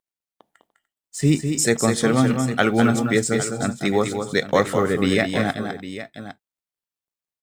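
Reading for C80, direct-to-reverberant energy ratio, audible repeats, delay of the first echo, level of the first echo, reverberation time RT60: no reverb, no reverb, 3, 203 ms, -6.5 dB, no reverb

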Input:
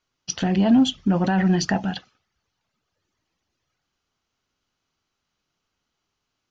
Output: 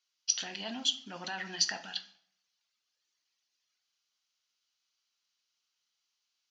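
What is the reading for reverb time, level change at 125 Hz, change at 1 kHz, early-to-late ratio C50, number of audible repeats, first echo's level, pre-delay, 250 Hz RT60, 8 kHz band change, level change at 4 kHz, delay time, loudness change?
0.65 s, -30.5 dB, -16.0 dB, 14.0 dB, no echo, no echo, 7 ms, 0.65 s, no reading, -1.0 dB, no echo, -12.5 dB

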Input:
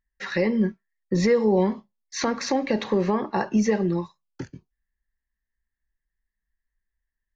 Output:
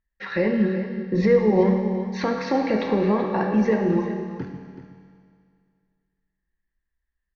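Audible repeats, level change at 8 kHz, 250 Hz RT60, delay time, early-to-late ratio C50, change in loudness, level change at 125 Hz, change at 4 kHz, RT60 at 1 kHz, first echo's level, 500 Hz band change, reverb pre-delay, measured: 1, no reading, 2.1 s, 378 ms, 3.5 dB, +1.5 dB, +3.0 dB, -4.5 dB, 2.1 s, -11.5 dB, +2.5 dB, 5 ms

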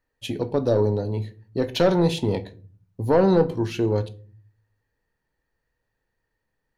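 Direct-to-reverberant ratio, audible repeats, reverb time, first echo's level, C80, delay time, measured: 9.5 dB, no echo, 0.40 s, no echo, 24.0 dB, no echo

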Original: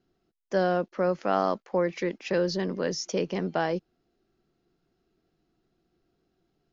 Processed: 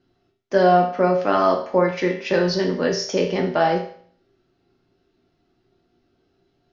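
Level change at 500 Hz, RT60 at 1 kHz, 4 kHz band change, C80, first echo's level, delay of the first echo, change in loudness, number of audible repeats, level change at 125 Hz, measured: +8.0 dB, 0.55 s, +8.0 dB, 11.5 dB, no echo, no echo, +8.5 dB, no echo, +7.0 dB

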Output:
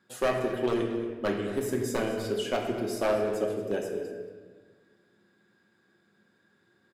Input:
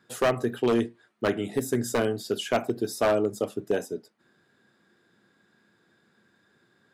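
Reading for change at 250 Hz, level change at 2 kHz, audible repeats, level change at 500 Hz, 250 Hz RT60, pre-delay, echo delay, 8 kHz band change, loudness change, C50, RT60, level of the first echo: -2.5 dB, -3.0 dB, 1, -2.0 dB, 1.8 s, 3 ms, 230 ms, -4.5 dB, -2.5 dB, 3.5 dB, 1.5 s, -15.0 dB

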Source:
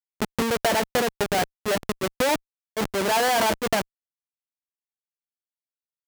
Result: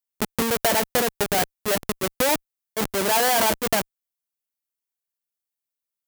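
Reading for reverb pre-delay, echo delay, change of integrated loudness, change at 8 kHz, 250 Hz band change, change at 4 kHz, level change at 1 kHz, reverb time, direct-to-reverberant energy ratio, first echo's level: no reverb, no echo, +2.0 dB, +5.5 dB, 0.0 dB, +1.5 dB, 0.0 dB, no reverb, no reverb, no echo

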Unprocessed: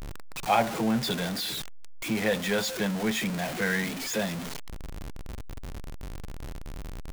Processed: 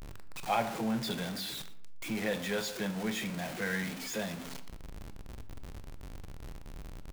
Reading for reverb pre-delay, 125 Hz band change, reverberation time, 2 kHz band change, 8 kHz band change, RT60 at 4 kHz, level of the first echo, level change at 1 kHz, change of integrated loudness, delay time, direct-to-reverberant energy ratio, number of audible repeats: 19 ms, -6.5 dB, 0.75 s, -6.5 dB, -7.0 dB, 0.40 s, -21.5 dB, -6.5 dB, -6.5 dB, 117 ms, 10.0 dB, 1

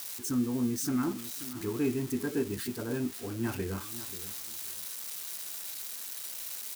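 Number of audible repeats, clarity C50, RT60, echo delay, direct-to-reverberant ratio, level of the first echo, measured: 2, no reverb, no reverb, 534 ms, no reverb, -14.5 dB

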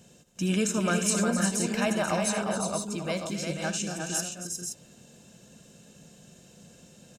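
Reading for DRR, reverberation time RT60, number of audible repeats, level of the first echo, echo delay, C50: no reverb, no reverb, 6, -13.0 dB, 76 ms, no reverb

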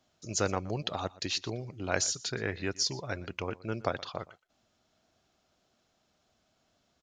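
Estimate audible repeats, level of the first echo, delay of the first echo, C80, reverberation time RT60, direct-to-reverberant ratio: 1, -20.5 dB, 120 ms, no reverb, no reverb, no reverb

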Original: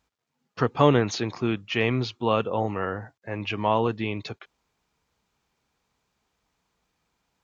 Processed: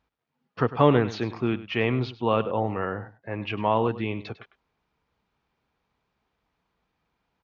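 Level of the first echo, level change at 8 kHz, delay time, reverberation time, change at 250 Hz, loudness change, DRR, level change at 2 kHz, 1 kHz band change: -15.5 dB, no reading, 101 ms, no reverb, 0.0 dB, 0.0 dB, no reverb, -1.5 dB, 0.0 dB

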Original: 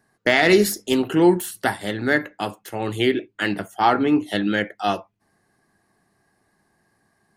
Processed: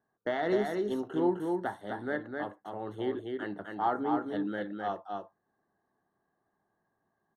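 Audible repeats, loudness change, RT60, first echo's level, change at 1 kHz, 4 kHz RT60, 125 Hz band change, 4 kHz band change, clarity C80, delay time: 1, -12.5 dB, no reverb, -4.0 dB, -10.0 dB, no reverb, -15.0 dB, -22.0 dB, no reverb, 257 ms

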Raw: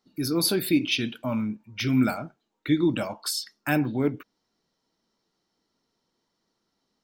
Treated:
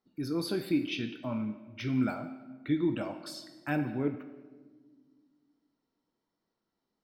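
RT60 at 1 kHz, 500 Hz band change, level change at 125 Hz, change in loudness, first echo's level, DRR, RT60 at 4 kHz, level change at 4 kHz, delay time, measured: 1.3 s, -6.0 dB, -6.5 dB, -7.5 dB, no echo, 7.5 dB, 0.95 s, -12.5 dB, no echo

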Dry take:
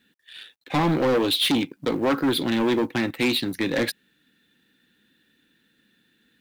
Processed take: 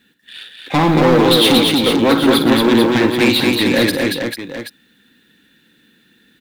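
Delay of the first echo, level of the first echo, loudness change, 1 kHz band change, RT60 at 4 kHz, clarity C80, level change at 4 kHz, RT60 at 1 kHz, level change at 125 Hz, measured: 51 ms, -10.5 dB, +10.0 dB, +10.5 dB, no reverb, no reverb, +10.5 dB, no reverb, +10.5 dB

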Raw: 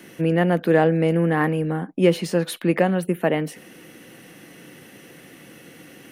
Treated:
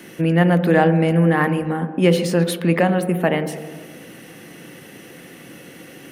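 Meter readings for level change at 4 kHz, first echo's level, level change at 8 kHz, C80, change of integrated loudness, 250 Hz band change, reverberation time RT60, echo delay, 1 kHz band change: +4.0 dB, no echo, +4.0 dB, 13.0 dB, +3.0 dB, +3.5 dB, 1.6 s, no echo, +4.0 dB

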